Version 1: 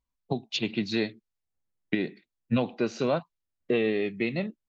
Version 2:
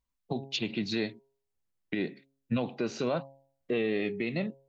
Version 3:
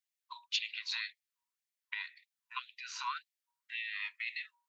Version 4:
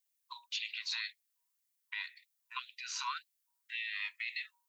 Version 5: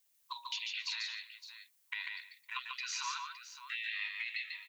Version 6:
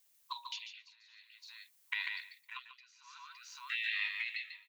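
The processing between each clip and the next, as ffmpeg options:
ffmpeg -i in.wav -af "bandreject=frequency=136.1:width_type=h:width=4,bandreject=frequency=272.2:width_type=h:width=4,bandreject=frequency=408.3:width_type=h:width=4,bandreject=frequency=544.4:width_type=h:width=4,bandreject=frequency=680.5:width_type=h:width=4,bandreject=frequency=816.6:width_type=h:width=4,bandreject=frequency=952.7:width_type=h:width=4,alimiter=limit=-21dB:level=0:latency=1:release=56" out.wav
ffmpeg -i in.wav -af "equalizer=frequency=990:width_type=o:width=0.22:gain=13.5,afftfilt=real='re*gte(b*sr/1024,850*pow(1800/850,0.5+0.5*sin(2*PI*1.9*pts/sr)))':imag='im*gte(b*sr/1024,850*pow(1800/850,0.5+0.5*sin(2*PI*1.9*pts/sr)))':win_size=1024:overlap=0.75" out.wav
ffmpeg -i in.wav -filter_complex "[0:a]acrossover=split=1800[link_01][link_02];[link_02]alimiter=level_in=7.5dB:limit=-24dB:level=0:latency=1:release=19,volume=-7.5dB[link_03];[link_01][link_03]amix=inputs=2:normalize=0,crystalizer=i=2:c=0,volume=-1.5dB" out.wav
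ffmpeg -i in.wav -filter_complex "[0:a]acompressor=threshold=-47dB:ratio=4,asplit=2[link_01][link_02];[link_02]aecho=0:1:143|158|265|564:0.668|0.141|0.126|0.251[link_03];[link_01][link_03]amix=inputs=2:normalize=0,volume=8dB" out.wav
ffmpeg -i in.wav -af "tremolo=f=0.51:d=0.97,volume=3.5dB" out.wav

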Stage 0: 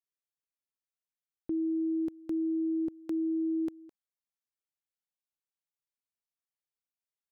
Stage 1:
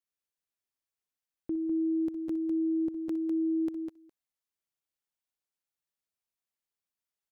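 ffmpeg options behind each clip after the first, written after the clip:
ffmpeg -i in.wav -af "aecho=1:1:60|63|201:0.188|0.133|0.501" out.wav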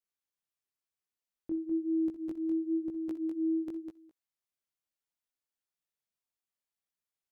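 ffmpeg -i in.wav -af "flanger=delay=15.5:depth=5.9:speed=1" out.wav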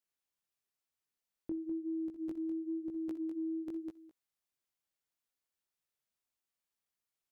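ffmpeg -i in.wav -af "acompressor=threshold=-37dB:ratio=6,volume=1dB" out.wav

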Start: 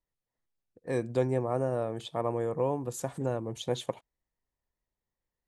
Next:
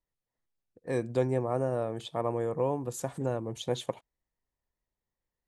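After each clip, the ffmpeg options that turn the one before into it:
ffmpeg -i in.wav -af anull out.wav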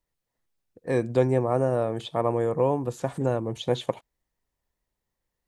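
ffmpeg -i in.wav -filter_complex "[0:a]acrossover=split=4400[link_01][link_02];[link_02]acompressor=threshold=-55dB:ratio=4:attack=1:release=60[link_03];[link_01][link_03]amix=inputs=2:normalize=0,volume=6dB" out.wav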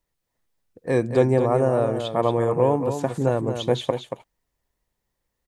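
ffmpeg -i in.wav -af "aecho=1:1:230:0.398,volume=3.5dB" out.wav

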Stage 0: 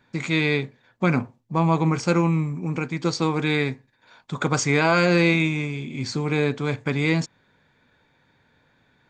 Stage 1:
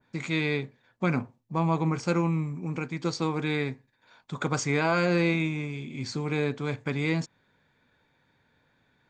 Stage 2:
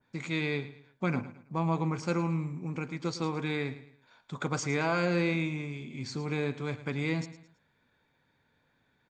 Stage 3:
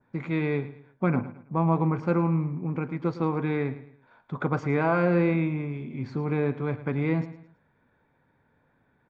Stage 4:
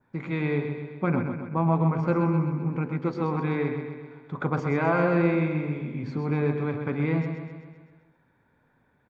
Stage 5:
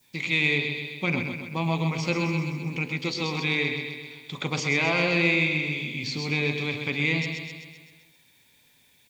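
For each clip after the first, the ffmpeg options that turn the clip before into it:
ffmpeg -i in.wav -af "adynamicequalizer=threshold=0.0251:dfrequency=1800:dqfactor=0.7:tfrequency=1800:tqfactor=0.7:attack=5:release=100:ratio=0.375:range=2:mode=cutabove:tftype=highshelf,volume=-5.5dB" out.wav
ffmpeg -i in.wav -af "aecho=1:1:109|218|327:0.188|0.0678|0.0244,volume=-4dB" out.wav
ffmpeg -i in.wav -af "lowpass=1500,volume=6dB" out.wav
ffmpeg -i in.wav -filter_complex "[0:a]bandreject=frequency=45.37:width_type=h:width=4,bandreject=frequency=90.74:width_type=h:width=4,bandreject=frequency=136.11:width_type=h:width=4,bandreject=frequency=181.48:width_type=h:width=4,bandreject=frequency=226.85:width_type=h:width=4,bandreject=frequency=272.22:width_type=h:width=4,bandreject=frequency=317.59:width_type=h:width=4,bandreject=frequency=362.96:width_type=h:width=4,bandreject=frequency=408.33:width_type=h:width=4,bandreject=frequency=453.7:width_type=h:width=4,bandreject=frequency=499.07:width_type=h:width=4,bandreject=frequency=544.44:width_type=h:width=4,bandreject=frequency=589.81:width_type=h:width=4,bandreject=frequency=635.18:width_type=h:width=4,bandreject=frequency=680.55:width_type=h:width=4,bandreject=frequency=725.92:width_type=h:width=4,asplit=2[link_01][link_02];[link_02]aecho=0:1:129|258|387|516|645|774|903:0.447|0.255|0.145|0.0827|0.0472|0.0269|0.0153[link_03];[link_01][link_03]amix=inputs=2:normalize=0" out.wav
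ffmpeg -i in.wav -filter_complex "[0:a]acrossover=split=3300[link_01][link_02];[link_02]acompressor=threshold=-58dB:ratio=4:attack=1:release=60[link_03];[link_01][link_03]amix=inputs=2:normalize=0,aexciter=amount=13.4:drive=9.4:freq=2400,volume=-3.5dB" out.wav

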